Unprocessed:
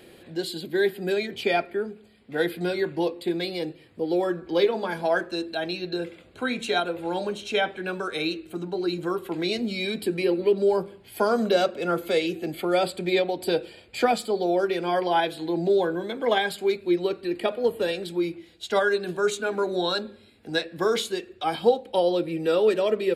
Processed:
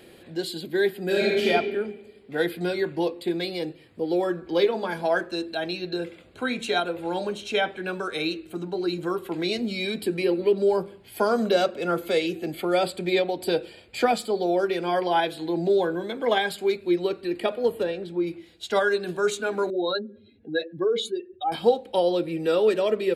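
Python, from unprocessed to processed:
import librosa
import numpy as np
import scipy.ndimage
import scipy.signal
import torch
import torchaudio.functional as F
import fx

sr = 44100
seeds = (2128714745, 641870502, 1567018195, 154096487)

y = fx.reverb_throw(x, sr, start_s=1.07, length_s=0.4, rt60_s=1.3, drr_db=-4.5)
y = fx.lowpass(y, sr, hz=1300.0, slope=6, at=(17.82, 18.26), fade=0.02)
y = fx.spec_expand(y, sr, power=2.0, at=(19.7, 21.52))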